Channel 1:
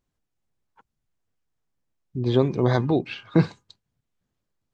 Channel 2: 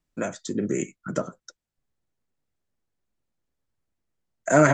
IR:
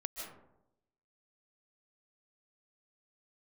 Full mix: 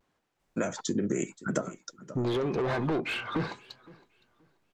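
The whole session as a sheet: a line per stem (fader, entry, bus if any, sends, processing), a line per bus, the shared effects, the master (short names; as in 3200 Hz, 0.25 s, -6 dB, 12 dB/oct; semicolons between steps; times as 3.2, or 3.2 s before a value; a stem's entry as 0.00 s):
-8.0 dB, 0.00 s, no send, echo send -24 dB, compressor 5:1, threshold -22 dBFS, peak gain reduction 9.5 dB; overdrive pedal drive 30 dB, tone 1500 Hz, clips at -10 dBFS
+2.0 dB, 0.40 s, no send, echo send -20 dB, dry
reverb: off
echo: feedback echo 0.522 s, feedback 23%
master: vibrato 0.86 Hz 57 cents; compressor, threshold -25 dBFS, peak gain reduction 14.5 dB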